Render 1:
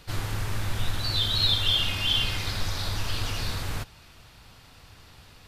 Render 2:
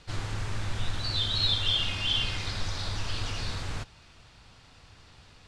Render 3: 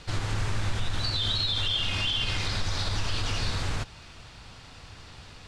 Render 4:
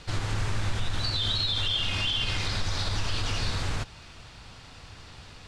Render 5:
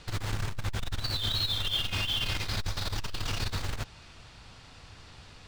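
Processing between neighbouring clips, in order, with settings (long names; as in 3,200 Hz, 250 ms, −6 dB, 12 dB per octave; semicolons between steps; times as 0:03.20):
low-pass filter 8,500 Hz 24 dB per octave; level −3 dB
in parallel at +2.5 dB: downward compressor, threshold −34 dBFS, peak gain reduction 12.5 dB; on the sum: brickwall limiter −18.5 dBFS, peak gain reduction 7 dB
no processing that can be heard
in parallel at −9 dB: bit reduction 5 bits; on the sum: saturating transformer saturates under 51 Hz; level −3.5 dB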